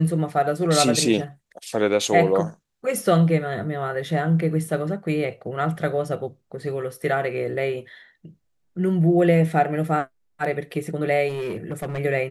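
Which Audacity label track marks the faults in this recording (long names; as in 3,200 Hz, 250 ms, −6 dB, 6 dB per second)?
11.280000	11.990000	clipping −24 dBFS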